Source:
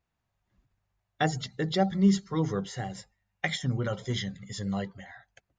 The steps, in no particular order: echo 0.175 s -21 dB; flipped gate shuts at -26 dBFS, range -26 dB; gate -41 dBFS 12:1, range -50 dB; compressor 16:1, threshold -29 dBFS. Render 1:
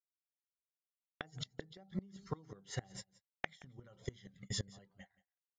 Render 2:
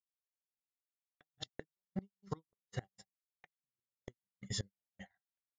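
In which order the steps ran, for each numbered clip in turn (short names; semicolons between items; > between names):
gate > compressor > flipped gate > echo; echo > compressor > flipped gate > gate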